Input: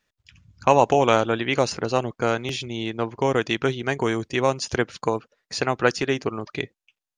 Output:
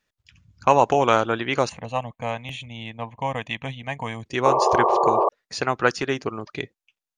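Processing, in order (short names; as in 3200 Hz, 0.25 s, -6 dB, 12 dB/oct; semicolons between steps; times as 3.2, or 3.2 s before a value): 1.69–4.26 fixed phaser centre 1400 Hz, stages 6; dynamic EQ 1200 Hz, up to +5 dB, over -33 dBFS, Q 1.3; 4.45–5.29 painted sound noise 340–1200 Hz -17 dBFS; gain -2 dB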